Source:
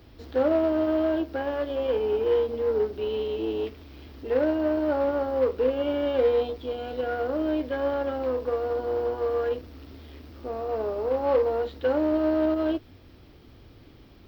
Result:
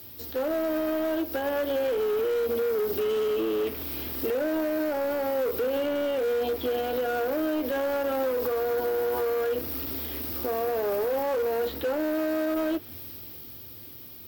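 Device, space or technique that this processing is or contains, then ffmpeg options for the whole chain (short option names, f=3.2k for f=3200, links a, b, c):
FM broadcast chain: -filter_complex "[0:a]highpass=f=75:w=0.5412,highpass=f=75:w=1.3066,dynaudnorm=f=110:g=31:m=11.5dB,acrossover=split=230|2500[a][b][c];[a]acompressor=threshold=-41dB:ratio=4[d];[b]acompressor=threshold=-17dB:ratio=4[e];[c]acompressor=threshold=-54dB:ratio=4[f];[d][e][f]amix=inputs=3:normalize=0,aemphasis=mode=production:type=50fm,alimiter=limit=-19dB:level=0:latency=1:release=61,asoftclip=type=hard:threshold=-23dB,lowpass=f=15k:w=0.5412,lowpass=f=15k:w=1.3066,aemphasis=mode=production:type=50fm"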